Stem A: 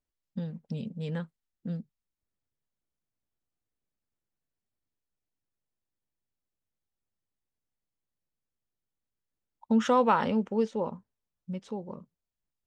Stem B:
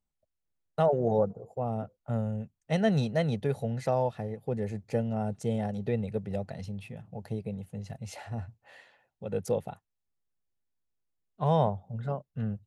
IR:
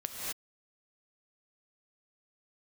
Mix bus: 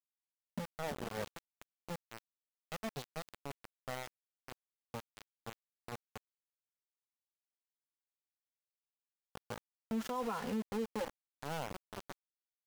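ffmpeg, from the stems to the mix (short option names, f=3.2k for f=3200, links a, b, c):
-filter_complex "[0:a]highpass=f=50:p=1,asplit=2[a][b];[b]adelay=2.5,afreqshift=0.41[c];[a][c]amix=inputs=2:normalize=1,adelay=200,volume=-2dB[d];[1:a]aeval=exprs='sgn(val(0))*max(abs(val(0))-0.00794,0)':c=same,volume=-12.5dB[e];[d][e]amix=inputs=2:normalize=0,aeval=exprs='val(0)*gte(abs(val(0)),0.0188)':c=same,alimiter=level_in=5dB:limit=-24dB:level=0:latency=1:release=163,volume=-5dB"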